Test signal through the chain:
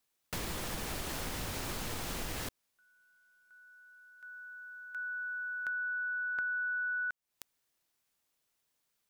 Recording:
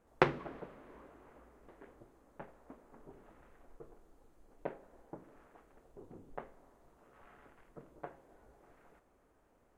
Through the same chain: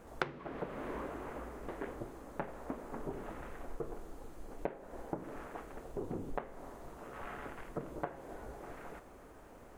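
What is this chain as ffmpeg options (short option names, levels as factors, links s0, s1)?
-af "acompressor=threshold=0.00316:ratio=8,volume=5.96"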